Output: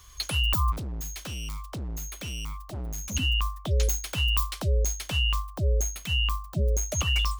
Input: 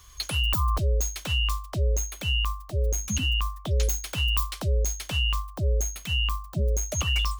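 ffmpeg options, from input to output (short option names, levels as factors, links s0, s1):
-filter_complex "[0:a]asplit=3[s0][s1][s2];[s0]afade=t=out:st=0.71:d=0.02[s3];[s1]asoftclip=type=hard:threshold=0.0251,afade=t=in:st=0.71:d=0.02,afade=t=out:st=3.14:d=0.02[s4];[s2]afade=t=in:st=3.14:d=0.02[s5];[s3][s4][s5]amix=inputs=3:normalize=0"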